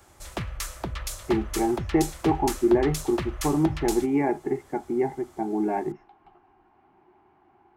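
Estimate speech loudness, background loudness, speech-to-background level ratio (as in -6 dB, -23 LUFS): -26.0 LUFS, -34.0 LUFS, 8.0 dB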